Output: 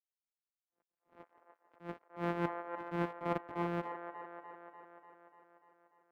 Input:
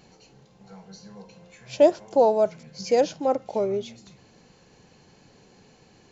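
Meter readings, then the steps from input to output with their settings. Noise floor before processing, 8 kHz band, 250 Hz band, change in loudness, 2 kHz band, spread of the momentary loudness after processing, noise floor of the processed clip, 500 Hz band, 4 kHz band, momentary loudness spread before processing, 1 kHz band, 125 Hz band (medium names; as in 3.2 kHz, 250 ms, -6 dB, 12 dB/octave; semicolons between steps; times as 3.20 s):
-57 dBFS, no reading, -9.5 dB, -17.0 dB, -2.5 dB, 18 LU, under -85 dBFS, -20.5 dB, -18.5 dB, 16 LU, -11.0 dB, -0.5 dB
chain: sorted samples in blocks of 256 samples; treble shelf 3.7 kHz -4 dB; reverse; compression 4:1, threshold -28 dBFS, peak gain reduction 14 dB; reverse; crossover distortion -43 dBFS; three-band isolator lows -15 dB, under 190 Hz, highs -23 dB, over 2.5 kHz; on a send: feedback echo behind a band-pass 295 ms, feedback 64%, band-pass 920 Hz, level -4.5 dB; on the sum: attacks held to a fixed rise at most 210 dB/s; trim -2 dB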